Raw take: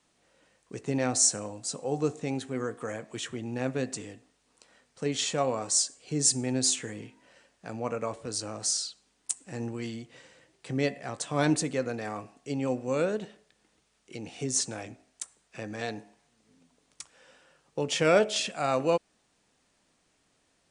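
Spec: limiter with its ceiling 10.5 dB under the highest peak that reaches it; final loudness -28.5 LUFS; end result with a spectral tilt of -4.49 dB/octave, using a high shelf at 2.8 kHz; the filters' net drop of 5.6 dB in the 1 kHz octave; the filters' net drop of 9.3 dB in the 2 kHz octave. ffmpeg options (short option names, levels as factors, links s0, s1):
-af "equalizer=f=1000:t=o:g=-5.5,equalizer=f=2000:t=o:g=-8,highshelf=f=2800:g=-6.5,volume=2.37,alimiter=limit=0.158:level=0:latency=1"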